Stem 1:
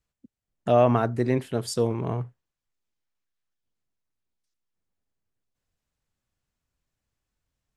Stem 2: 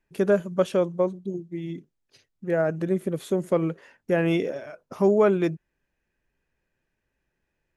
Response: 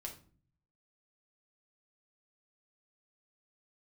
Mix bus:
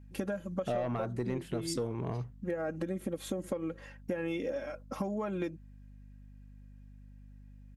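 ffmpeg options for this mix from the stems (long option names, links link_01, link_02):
-filter_complex "[0:a]asoftclip=type=tanh:threshold=-14.5dB,volume=-2dB[link_01];[1:a]aecho=1:1:3.7:0.74,acompressor=threshold=-24dB:ratio=6,aeval=exprs='val(0)+0.00355*(sin(2*PI*50*n/s)+sin(2*PI*2*50*n/s)/2+sin(2*PI*3*50*n/s)/3+sin(2*PI*4*50*n/s)/4+sin(2*PI*5*50*n/s)/5)':channel_layout=same,volume=-2dB[link_02];[link_01][link_02]amix=inputs=2:normalize=0,acompressor=threshold=-31dB:ratio=5"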